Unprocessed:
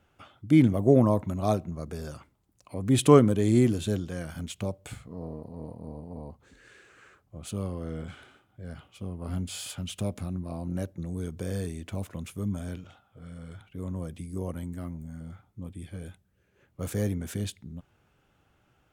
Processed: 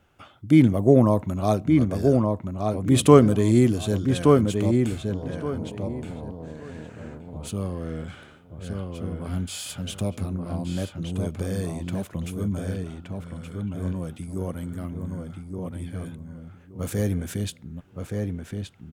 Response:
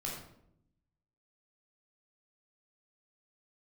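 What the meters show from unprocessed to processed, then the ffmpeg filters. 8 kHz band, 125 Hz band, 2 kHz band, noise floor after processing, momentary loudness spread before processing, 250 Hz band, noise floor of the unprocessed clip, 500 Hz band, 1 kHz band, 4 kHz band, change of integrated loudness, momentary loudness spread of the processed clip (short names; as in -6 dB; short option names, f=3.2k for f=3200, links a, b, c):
+4.0 dB, +5.0 dB, +4.5 dB, -50 dBFS, 23 LU, +5.0 dB, -69 dBFS, +5.0 dB, +5.0 dB, +4.5 dB, +4.0 dB, 19 LU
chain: -filter_complex "[0:a]asplit=2[a][b];[b]adelay=1172,lowpass=f=3k:p=1,volume=-3.5dB,asplit=2[c][d];[d]adelay=1172,lowpass=f=3k:p=1,volume=0.22,asplit=2[e][f];[f]adelay=1172,lowpass=f=3k:p=1,volume=0.22[g];[a][c][e][g]amix=inputs=4:normalize=0,volume=3.5dB"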